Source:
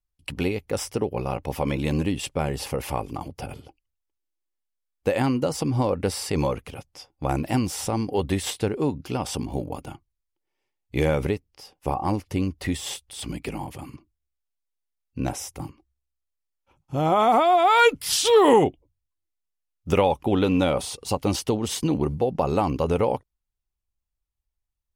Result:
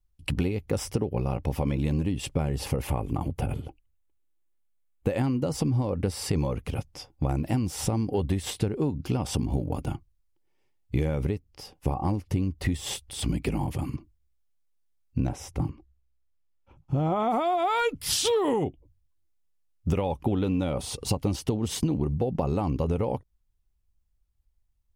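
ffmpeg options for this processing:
-filter_complex "[0:a]asettb=1/sr,asplit=3[a][b][c];[a]atrim=end=2.874[d];[b]atrim=start=2.87:end=5.09,asetpts=PTS-STARTPTS,afade=t=in:d=0.004:c=qsin,afade=t=out:st=2.216:d=0.004:c=qsin,equalizer=f=5.1k:t=o:w=0.47:g=-11[e];[c]atrim=start=5.086[f];[d][e]acrossfade=d=0.004:c1=hsin:c2=qsin[g];[g][f]acrossfade=d=0.004:c1=qsin:c2=hsin,asettb=1/sr,asplit=3[h][i][j];[h]atrim=end=15.274[k];[i]atrim=start=15.27:end=17.31,asetpts=PTS-STARTPTS,afade=t=in:d=0.004:c=qsin,afade=t=out:st=2.036:d=0.004:c=qsin,lowpass=f=3.3k:p=1[l];[j]atrim=start=17.306[m];[k][l]acrossfade=d=0.004:c1=hsin:c2=qsin[n];[n][m]acrossfade=d=0.004:c1=qsin:c2=hsin,lowshelf=f=290:g=11.5,acompressor=threshold=-24dB:ratio=6,volume=1dB"

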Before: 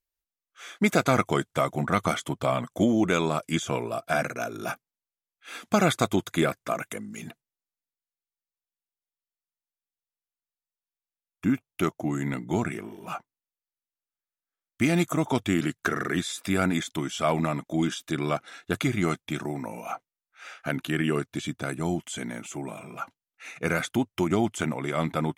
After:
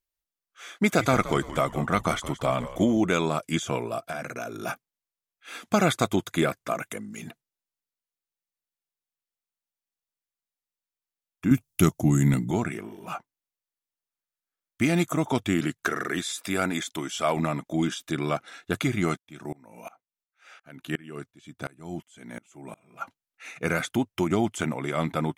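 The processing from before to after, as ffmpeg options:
-filter_complex "[0:a]asettb=1/sr,asplit=3[a][b][c];[a]atrim=end=0.704[d];[b]atrim=start=0.7:end=2.98,asetpts=PTS-STARTPTS,afade=t=in:d=0.004:c=qsin,afade=t=out:st=2.276:d=0.004:c=qsin,asplit=5[e][f][g][h][i];[f]adelay=171,afreqshift=-100,volume=-14dB[j];[g]adelay=342,afreqshift=-200,volume=-21.3dB[k];[h]adelay=513,afreqshift=-300,volume=-28.7dB[l];[i]adelay=684,afreqshift=-400,volume=-36dB[m];[e][j][k][l][m]amix=inputs=5:normalize=0,atrim=end_sample=100548[n];[c]atrim=start=2.976[o];[d][n]acrossfade=d=0.004:c1=hsin:c2=qsin[p];[p][o]acrossfade=d=0.004:c1=qsin:c2=hsin,asettb=1/sr,asplit=3[q][r][s];[q]atrim=end=4.014[t];[r]atrim=start=4.01:end=4.52,asetpts=PTS-STARTPTS,afade=t=in:d=0.004:c=qsin,afade=t=out:st=0.506:d=0.004:c=qsin,acompressor=threshold=-29dB:ratio=6:attack=3.2:release=140:knee=1:detection=peak[u];[s]atrim=start=4.516[v];[t][u]acrossfade=d=0.004:c1=hsin:c2=qsin[w];[w][v]acrossfade=d=0.004:c1=qsin:c2=hsin,asettb=1/sr,asplit=3[x][y][z];[x]atrim=end=11.514[aa];[y]atrim=start=11.51:end=12.51,asetpts=PTS-STARTPTS,afade=t=in:d=0.004:c=qsin,afade=t=out:st=0.996:d=0.004:c=qsin,bass=f=250:g=13,treble=f=4k:g=13[ab];[z]atrim=start=12.506[ac];[aa][ab]acrossfade=d=0.004:c1=hsin:c2=qsin[ad];[ad][ac]acrossfade=d=0.004:c1=qsin:c2=hsin,asettb=1/sr,asplit=3[ae][af][ag];[ae]atrim=end=15.844[ah];[af]atrim=start=15.84:end=17.37,asetpts=PTS-STARTPTS,afade=t=in:d=0.004:c=qsin,afade=t=out:st=1.526:d=0.004:c=qsin,bass=f=250:g=-7,treble=f=4k:g=2[ai];[ag]atrim=start=17.366[aj];[ah][ai]acrossfade=d=0.004:c1=hsin:c2=qsin[ak];[ak][aj]acrossfade=d=0.004:c1=qsin:c2=hsin,asettb=1/sr,asplit=3[al][am][an];[al]atrim=end=19.174[ao];[am]atrim=start=19.17:end=23.01,asetpts=PTS-STARTPTS,afade=t=in:d=0.004:c=qsin,afade=t=out:st=3.836:d=0.004:c=qsin,aeval=exprs='val(0)*pow(10,-27*if(lt(mod(-2.8*n/s,1),2*abs(-2.8)/1000),1-mod(-2.8*n/s,1)/(2*abs(-2.8)/1000),(mod(-2.8*n/s,1)-2*abs(-2.8)/1000)/(1-2*abs(-2.8)/1000))/20)':c=same[ap];[an]atrim=start=23.006[aq];[ao][ap]acrossfade=d=0.004:c1=hsin:c2=qsin[ar];[ar][aq]acrossfade=d=0.004:c1=qsin:c2=hsin"

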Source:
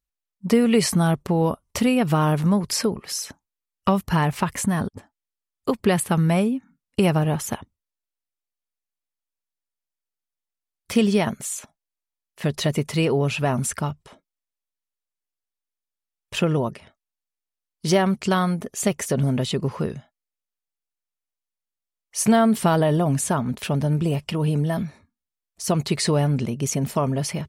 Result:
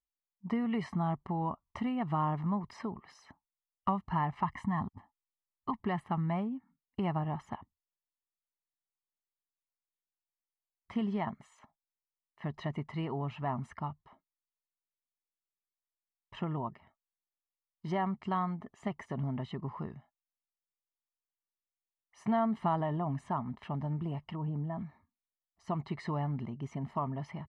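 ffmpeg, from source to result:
-filter_complex "[0:a]asettb=1/sr,asplit=3[a][b][c];[a]atrim=end=4.444[d];[b]atrim=start=4.44:end=5.83,asetpts=PTS-STARTPTS,afade=t=in:d=0.004:c=qsin,afade=t=out:st=1.386:d=0.004:c=qsin,aecho=1:1:1:0.59,atrim=end_sample=61299[e];[c]atrim=start=5.826[f];[d][e]acrossfade=d=0.004:c1=hsin:c2=qsin[g];[g][f]acrossfade=d=0.004:c1=qsin:c2=hsin,asplit=3[h][i][j];[h]afade=t=out:st=24.35:d=0.02[k];[i]lowpass=f=1k:p=1,afade=t=in:st=24.35:d=0.02,afade=t=out:st=24.78:d=0.02[l];[j]afade=t=in:st=24.78:d=0.02[m];[k][l][m]amix=inputs=3:normalize=0,lowpass=1.3k,lowshelf=f=370:g=-10,aecho=1:1:1:0.73,volume=-8.5dB"

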